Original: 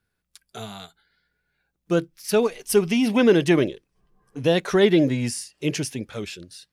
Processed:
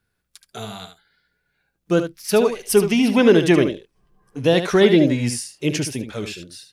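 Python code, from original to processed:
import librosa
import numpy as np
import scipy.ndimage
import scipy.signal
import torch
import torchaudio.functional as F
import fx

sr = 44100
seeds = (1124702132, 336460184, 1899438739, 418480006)

y = x + 10.0 ** (-9.0 / 20.0) * np.pad(x, (int(74 * sr / 1000.0), 0))[:len(x)]
y = y * 10.0 ** (3.0 / 20.0)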